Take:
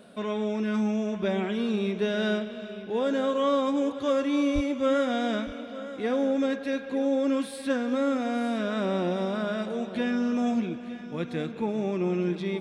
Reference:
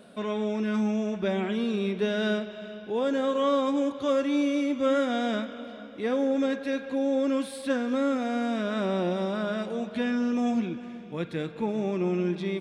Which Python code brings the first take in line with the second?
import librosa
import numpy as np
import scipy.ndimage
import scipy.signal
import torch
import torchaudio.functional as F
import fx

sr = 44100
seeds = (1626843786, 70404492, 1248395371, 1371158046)

y = fx.highpass(x, sr, hz=140.0, slope=24, at=(4.54, 4.66), fade=0.02)
y = fx.fix_echo_inverse(y, sr, delay_ms=915, level_db=-14.5)